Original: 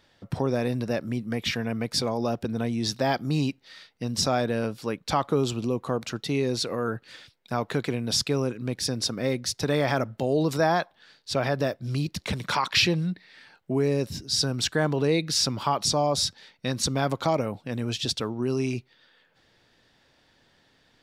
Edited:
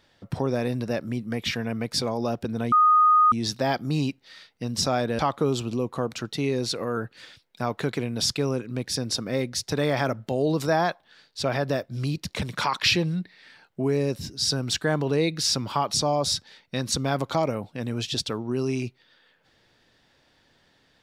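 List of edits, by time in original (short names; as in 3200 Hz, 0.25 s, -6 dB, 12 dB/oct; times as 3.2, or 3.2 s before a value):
2.72 add tone 1240 Hz -14 dBFS 0.60 s
4.59–5.1 cut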